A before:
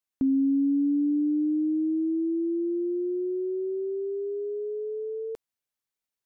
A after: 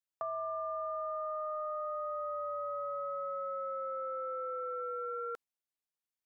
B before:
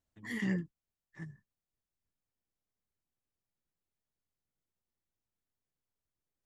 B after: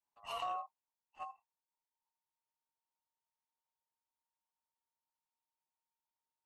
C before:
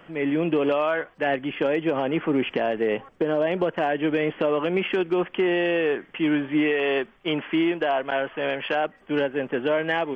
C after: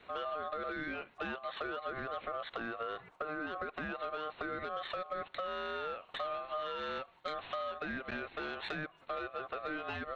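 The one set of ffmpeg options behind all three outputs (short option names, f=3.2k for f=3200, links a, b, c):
-af "adynamicequalizer=threshold=0.00891:dfrequency=150:dqfactor=1.1:tfrequency=150:tqfactor=1.1:attack=5:release=100:ratio=0.375:range=2.5:mode=boostabove:tftype=bell,agate=range=-6dB:threshold=-46dB:ratio=16:detection=peak,acompressor=threshold=-34dB:ratio=8,asoftclip=type=tanh:threshold=-26.5dB,aeval=exprs='val(0)*sin(2*PI*920*n/s)':c=same,volume=1dB"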